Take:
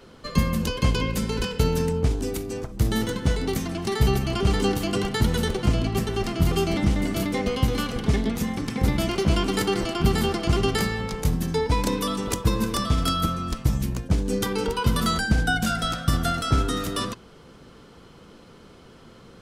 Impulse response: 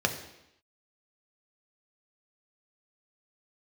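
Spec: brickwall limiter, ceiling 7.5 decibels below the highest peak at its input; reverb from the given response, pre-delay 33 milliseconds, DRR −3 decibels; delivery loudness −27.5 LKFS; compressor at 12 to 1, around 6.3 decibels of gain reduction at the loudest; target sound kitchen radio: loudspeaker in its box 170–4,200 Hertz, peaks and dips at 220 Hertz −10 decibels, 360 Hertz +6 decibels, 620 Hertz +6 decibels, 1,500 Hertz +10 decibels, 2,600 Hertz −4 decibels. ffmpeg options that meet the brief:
-filter_complex "[0:a]acompressor=threshold=-21dB:ratio=12,alimiter=limit=-19dB:level=0:latency=1,asplit=2[link_01][link_02];[1:a]atrim=start_sample=2205,adelay=33[link_03];[link_02][link_03]afir=irnorm=-1:irlink=0,volume=-7.5dB[link_04];[link_01][link_04]amix=inputs=2:normalize=0,highpass=170,equalizer=frequency=220:width_type=q:width=4:gain=-10,equalizer=frequency=360:width_type=q:width=4:gain=6,equalizer=frequency=620:width_type=q:width=4:gain=6,equalizer=frequency=1500:width_type=q:width=4:gain=10,equalizer=frequency=2600:width_type=q:width=4:gain=-4,lowpass=frequency=4200:width=0.5412,lowpass=frequency=4200:width=1.3066,volume=-4dB"

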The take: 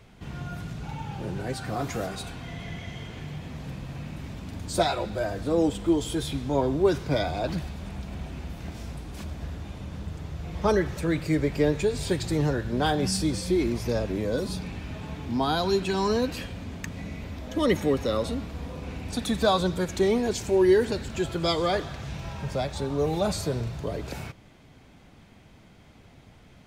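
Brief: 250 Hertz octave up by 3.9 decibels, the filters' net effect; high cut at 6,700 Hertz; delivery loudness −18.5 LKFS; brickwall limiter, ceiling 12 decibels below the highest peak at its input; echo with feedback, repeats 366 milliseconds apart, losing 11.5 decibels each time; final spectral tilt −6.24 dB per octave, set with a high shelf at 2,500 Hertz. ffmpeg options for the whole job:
ffmpeg -i in.wav -af "lowpass=6700,equalizer=frequency=250:width_type=o:gain=5.5,highshelf=frequency=2500:gain=-3,alimiter=limit=-20.5dB:level=0:latency=1,aecho=1:1:366|732|1098:0.266|0.0718|0.0194,volume=12.5dB" out.wav

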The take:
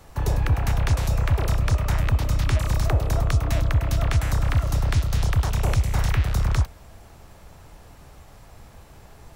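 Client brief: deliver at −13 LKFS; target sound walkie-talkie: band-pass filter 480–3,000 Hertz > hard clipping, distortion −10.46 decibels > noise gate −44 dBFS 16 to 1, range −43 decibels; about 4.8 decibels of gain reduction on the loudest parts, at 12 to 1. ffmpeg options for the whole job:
ffmpeg -i in.wav -af "acompressor=threshold=-21dB:ratio=12,highpass=480,lowpass=3000,asoftclip=type=hard:threshold=-33dB,agate=range=-43dB:threshold=-44dB:ratio=16,volume=27dB" out.wav

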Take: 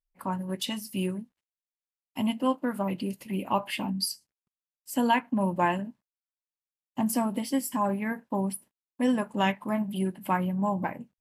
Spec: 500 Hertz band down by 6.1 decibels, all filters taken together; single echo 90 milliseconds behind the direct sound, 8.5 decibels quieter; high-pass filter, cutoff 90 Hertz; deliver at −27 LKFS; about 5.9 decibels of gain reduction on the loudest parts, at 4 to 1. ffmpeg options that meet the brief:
ffmpeg -i in.wav -af "highpass=90,equalizer=frequency=500:width_type=o:gain=-8,acompressor=threshold=-29dB:ratio=4,aecho=1:1:90:0.376,volume=7dB" out.wav

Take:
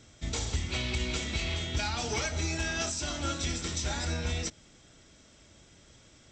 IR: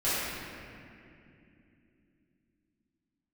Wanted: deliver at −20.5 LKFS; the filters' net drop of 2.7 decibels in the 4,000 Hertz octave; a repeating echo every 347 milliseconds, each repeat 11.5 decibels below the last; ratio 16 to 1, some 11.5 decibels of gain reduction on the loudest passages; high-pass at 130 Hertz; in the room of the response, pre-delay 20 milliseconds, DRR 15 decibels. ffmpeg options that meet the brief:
-filter_complex "[0:a]highpass=130,equalizer=frequency=4000:width_type=o:gain=-3.5,acompressor=threshold=-41dB:ratio=16,aecho=1:1:347|694|1041:0.266|0.0718|0.0194,asplit=2[link_01][link_02];[1:a]atrim=start_sample=2205,adelay=20[link_03];[link_02][link_03]afir=irnorm=-1:irlink=0,volume=-27.5dB[link_04];[link_01][link_04]amix=inputs=2:normalize=0,volume=23dB"

